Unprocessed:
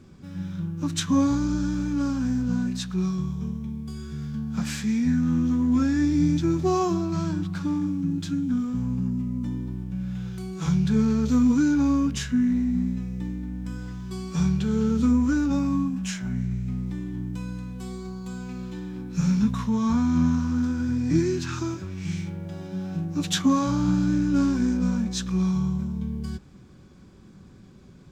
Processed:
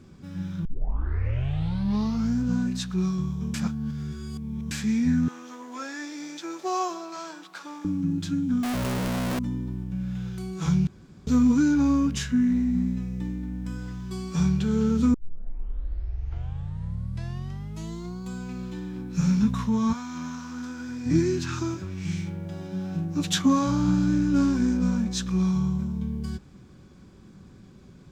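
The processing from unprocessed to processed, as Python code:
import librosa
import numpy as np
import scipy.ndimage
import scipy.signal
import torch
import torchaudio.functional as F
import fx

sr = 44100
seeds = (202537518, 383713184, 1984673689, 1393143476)

y = fx.highpass(x, sr, hz=460.0, slope=24, at=(5.28, 7.85))
y = fx.clip_1bit(y, sr, at=(8.63, 9.39))
y = fx.highpass(y, sr, hz=fx.line((19.92, 1400.0), (21.05, 580.0)), slope=6, at=(19.92, 21.05), fade=0.02)
y = fx.edit(y, sr, fx.tape_start(start_s=0.65, length_s=1.77),
    fx.reverse_span(start_s=3.54, length_s=1.17),
    fx.room_tone_fill(start_s=10.87, length_s=0.4),
    fx.tape_start(start_s=15.14, length_s=3.09), tone=tone)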